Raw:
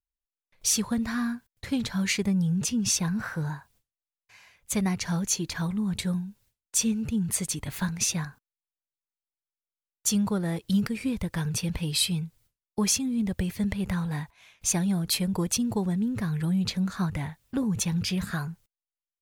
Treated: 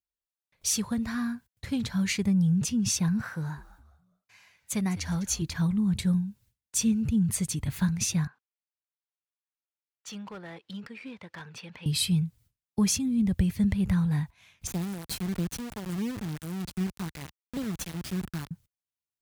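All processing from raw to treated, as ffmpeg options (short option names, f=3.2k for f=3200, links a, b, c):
-filter_complex "[0:a]asettb=1/sr,asplit=3[a][b][c];[a]atrim=end=3.214[d];[b]atrim=start=3.21:end=5.42,asetpts=PTS-STARTPTS,afade=t=in:d=0.004:c=qsin,afade=t=out:st=2.206:d=0.004:c=qsin,highpass=f=260:p=1,asplit=4[e][f][g][h];[f]adelay=205,afreqshift=-110,volume=-16dB[i];[g]adelay=410,afreqshift=-220,volume=-25.9dB[j];[h]adelay=615,afreqshift=-330,volume=-35.8dB[k];[e][i][j][k]amix=inputs=4:normalize=0,atrim=end_sample=97461[l];[c]atrim=start=5.416[m];[d][l]acrossfade=d=0.004:c1=hsin:c2=qsin[n];[n][m]acrossfade=d=0.004:c1=qsin:c2=hsin,asettb=1/sr,asplit=3[o][p][q];[o]atrim=end=8.274[r];[p]atrim=start=8.27:end=11.86,asetpts=PTS-STARTPTS,afade=t=in:d=0.004:c=qsin,afade=t=out:st=3.586:d=0.004:c=qsin,highpass=590,lowpass=3k,asoftclip=type=hard:threshold=-33dB[s];[q]atrim=start=11.856[t];[r][s]acrossfade=d=0.004:c1=hsin:c2=qsin[u];[u][t]acrossfade=d=0.004:c1=qsin:c2=hsin,asettb=1/sr,asplit=3[v][w][x];[v]atrim=end=14.674[y];[w]atrim=start=14.67:end=18.51,asetpts=PTS-STARTPTS,afade=t=in:d=0.004:c=qsin,afade=t=out:st=3.836:d=0.004:c=qsin,highpass=f=130:w=0.5412,highpass=f=130:w=1.3066,acrossover=split=650[z][aa];[z]aeval=exprs='val(0)*(1-0.7/2+0.7/2*cos(2*PI*1.4*n/s))':c=same[ab];[aa]aeval=exprs='val(0)*(1-0.7/2-0.7/2*cos(2*PI*1.4*n/s))':c=same[ac];[ab][ac]amix=inputs=2:normalize=0,acrusher=bits=3:dc=4:mix=0:aa=0.000001[ad];[x]atrim=start=18.506[ae];[y][ad]acrossfade=d=0.004:c1=hsin:c2=qsin[af];[af][ae]acrossfade=d=0.004:c1=qsin:c2=hsin,highpass=55,asubboost=boost=3:cutoff=240,volume=-3dB"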